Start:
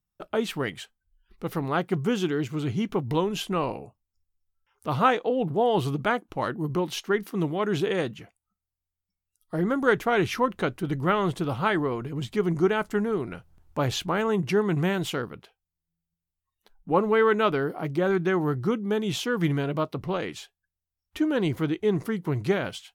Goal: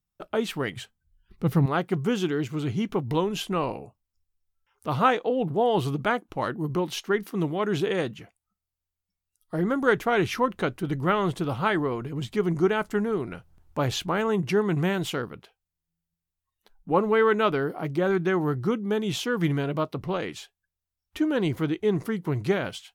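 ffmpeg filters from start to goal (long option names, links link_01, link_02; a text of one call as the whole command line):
ffmpeg -i in.wav -filter_complex "[0:a]asettb=1/sr,asplit=3[link_01][link_02][link_03];[link_01]atrim=end=0.764[link_04];[link_02]atrim=start=0.76:end=1.66,asetpts=PTS-STARTPTS,afade=type=in:duration=0.004:curve=qsin,afade=type=out:start_time=0.896:duration=0.004:curve=qsin,equalizer=frequency=120:width_type=o:width=1.6:gain=14.5[link_05];[link_03]atrim=start=1.656[link_06];[link_04][link_05]acrossfade=duration=0.004:curve1=hsin:curve2=qsin[link_07];[link_07][link_06]acrossfade=duration=0.004:curve1=qsin:curve2=hsin" out.wav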